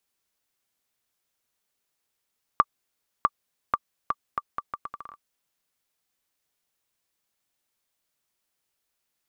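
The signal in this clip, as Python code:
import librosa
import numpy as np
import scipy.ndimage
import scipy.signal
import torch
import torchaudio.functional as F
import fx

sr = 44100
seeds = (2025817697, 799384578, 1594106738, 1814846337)

y = fx.bouncing_ball(sr, first_gap_s=0.65, ratio=0.75, hz=1170.0, decay_ms=42.0, level_db=-5.0)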